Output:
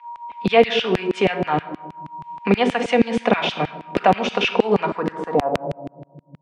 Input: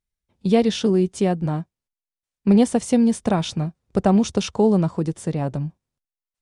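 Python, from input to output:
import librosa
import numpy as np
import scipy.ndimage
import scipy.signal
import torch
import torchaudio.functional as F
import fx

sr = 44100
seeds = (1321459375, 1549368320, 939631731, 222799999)

y = fx.recorder_agc(x, sr, target_db=-13.5, rise_db_per_s=6.7, max_gain_db=30)
y = fx.low_shelf(y, sr, hz=120.0, db=8.5)
y = y + 10.0 ** (-51.0 / 20.0) * np.sin(2.0 * np.pi * 950.0 * np.arange(len(y)) / sr)
y = fx.filter_sweep_lowpass(y, sr, from_hz=2500.0, to_hz=120.0, start_s=4.83, end_s=6.36, q=2.4)
y = fx.room_shoebox(y, sr, seeds[0], volume_m3=3300.0, walls='furnished', distance_m=1.8)
y = fx.filter_lfo_highpass(y, sr, shape='saw_down', hz=6.3, low_hz=310.0, high_hz=2700.0, q=1.1)
y = fx.band_squash(y, sr, depth_pct=40)
y = y * librosa.db_to_amplitude(5.5)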